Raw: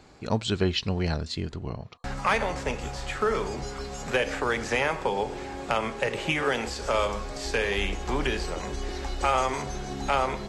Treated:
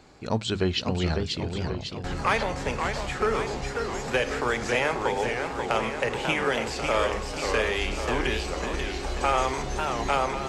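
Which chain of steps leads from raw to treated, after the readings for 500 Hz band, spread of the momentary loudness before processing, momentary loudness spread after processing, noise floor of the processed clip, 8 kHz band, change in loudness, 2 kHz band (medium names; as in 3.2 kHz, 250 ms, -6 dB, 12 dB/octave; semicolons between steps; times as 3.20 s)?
+1.5 dB, 9 LU, 5 LU, -36 dBFS, +1.5 dB, +1.5 dB, +1.5 dB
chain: hum notches 50/100/150/200 Hz; modulated delay 543 ms, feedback 57%, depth 204 cents, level -5.5 dB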